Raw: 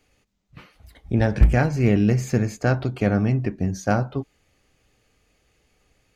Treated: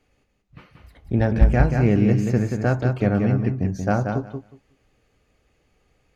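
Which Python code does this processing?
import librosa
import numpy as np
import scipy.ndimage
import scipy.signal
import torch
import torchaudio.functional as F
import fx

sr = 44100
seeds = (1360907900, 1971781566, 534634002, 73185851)

y = fx.high_shelf(x, sr, hz=2900.0, db=-8.5)
y = fx.echo_feedback(y, sr, ms=182, feedback_pct=16, wet_db=-5.5)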